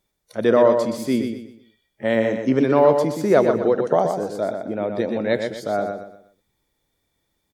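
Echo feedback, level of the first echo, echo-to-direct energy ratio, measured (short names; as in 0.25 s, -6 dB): 33%, -6.0 dB, -5.5 dB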